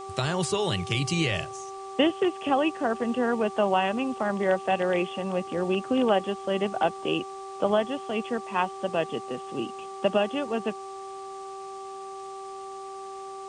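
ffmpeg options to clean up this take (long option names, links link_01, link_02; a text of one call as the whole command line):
ffmpeg -i in.wav -af "bandreject=frequency=388.3:width_type=h:width=4,bandreject=frequency=776.6:width_type=h:width=4,bandreject=frequency=1164.9:width_type=h:width=4,afwtdn=0.0028" out.wav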